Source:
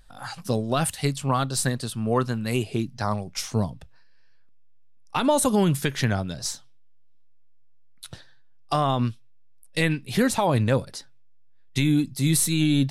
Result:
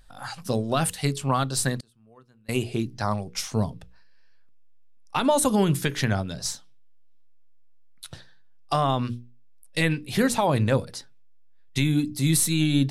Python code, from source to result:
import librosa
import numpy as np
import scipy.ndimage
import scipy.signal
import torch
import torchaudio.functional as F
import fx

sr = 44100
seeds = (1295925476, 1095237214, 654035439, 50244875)

y = fx.hum_notches(x, sr, base_hz=60, count=8)
y = fx.gate_flip(y, sr, shuts_db=-25.0, range_db=-30, at=(1.76, 2.49))